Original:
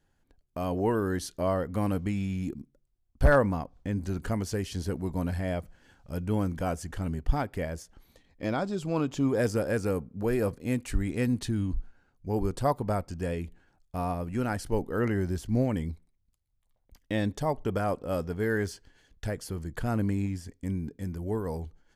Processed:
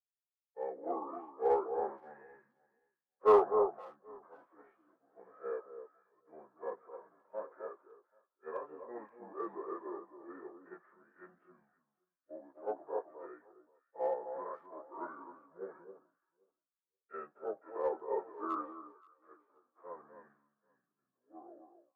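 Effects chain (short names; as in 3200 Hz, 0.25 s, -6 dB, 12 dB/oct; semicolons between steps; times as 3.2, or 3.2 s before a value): pitch shift by moving bins -5.5 st; steep low-pass 1600 Hz 36 dB/oct; gate with hold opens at -50 dBFS; HPF 500 Hz 24 dB/oct; harmonic-percussive split percussive -16 dB; in parallel at -8.5 dB: overloaded stage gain 33 dB; on the sum: echo with dull and thin repeats by turns 0.263 s, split 1200 Hz, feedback 53%, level -4.5 dB; three-band expander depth 100%; gain -2.5 dB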